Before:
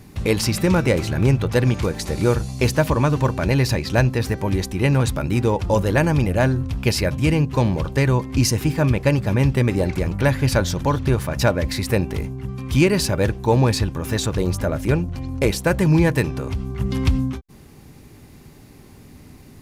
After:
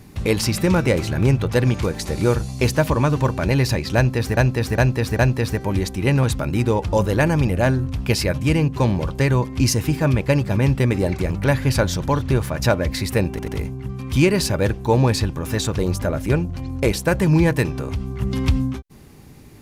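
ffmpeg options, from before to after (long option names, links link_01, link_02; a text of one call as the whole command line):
ffmpeg -i in.wav -filter_complex "[0:a]asplit=6[link_01][link_02][link_03][link_04][link_05][link_06];[link_01]atrim=end=4.372[link_07];[link_02]atrim=start=3.958:end=4.372[link_08];[link_03]atrim=start=3.958:end=4.372[link_09];[link_04]atrim=start=3.958:end=12.162[link_10];[link_05]atrim=start=12.068:end=12.162[link_11];[link_06]atrim=start=12.068[link_12];[link_07][link_08]acrossfade=duration=0.004:curve1=hsin:curve2=hsin[link_13];[link_13][link_09]acrossfade=duration=0.004:curve1=hsin:curve2=hsin[link_14];[link_14][link_10]acrossfade=duration=0.004:curve1=hsin:curve2=hsin[link_15];[link_15][link_11]acrossfade=duration=0.004:curve1=hsin:curve2=hsin[link_16];[link_16][link_12]acrossfade=duration=0.004:curve1=hsin:curve2=hsin" out.wav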